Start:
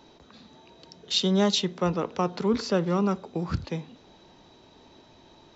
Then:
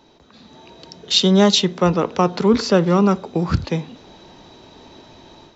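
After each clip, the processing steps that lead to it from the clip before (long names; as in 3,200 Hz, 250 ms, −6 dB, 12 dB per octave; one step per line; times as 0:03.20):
automatic gain control gain up to 9 dB
level +1 dB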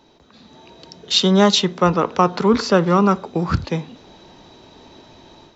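dynamic equaliser 1,200 Hz, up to +6 dB, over −33 dBFS, Q 1.2
level −1 dB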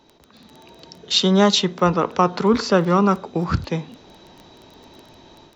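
surface crackle 11 per second −29 dBFS
level −1.5 dB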